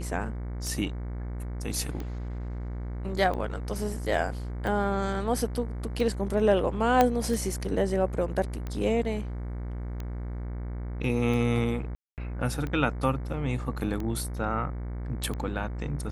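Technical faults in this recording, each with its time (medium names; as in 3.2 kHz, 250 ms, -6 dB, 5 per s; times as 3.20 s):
buzz 60 Hz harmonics 38 -34 dBFS
tick 45 rpm
7.01 s: pop -8 dBFS
11.95–12.18 s: dropout 228 ms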